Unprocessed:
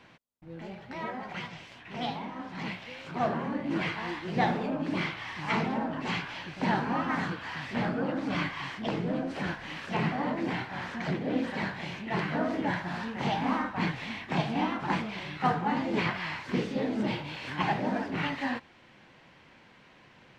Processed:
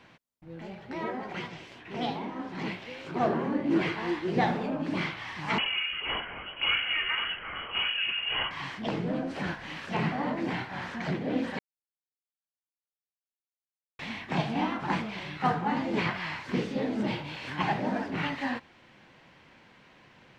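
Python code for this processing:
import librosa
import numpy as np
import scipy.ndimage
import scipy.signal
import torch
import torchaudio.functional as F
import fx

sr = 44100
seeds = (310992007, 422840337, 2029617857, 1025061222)

y = fx.peak_eq(x, sr, hz=370.0, db=9.0, octaves=0.77, at=(0.85, 4.4))
y = fx.freq_invert(y, sr, carrier_hz=3100, at=(5.58, 8.51))
y = fx.edit(y, sr, fx.silence(start_s=11.59, length_s=2.4), tone=tone)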